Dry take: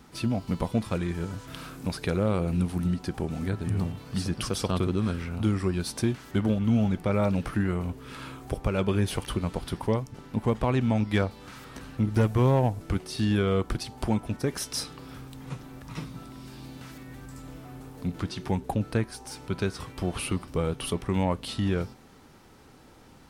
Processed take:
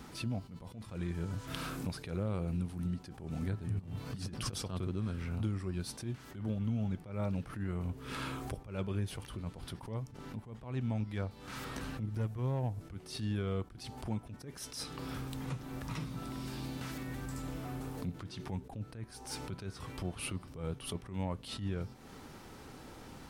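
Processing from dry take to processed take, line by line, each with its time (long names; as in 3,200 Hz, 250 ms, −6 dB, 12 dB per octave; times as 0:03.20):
0:03.79–0:04.53: compressor whose output falls as the input rises −33 dBFS, ratio −0.5
whole clip: dynamic equaliser 110 Hz, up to +6 dB, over −39 dBFS, Q 1.1; downward compressor 4 to 1, threshold −38 dBFS; level that may rise only so fast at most 110 dB per second; level +3 dB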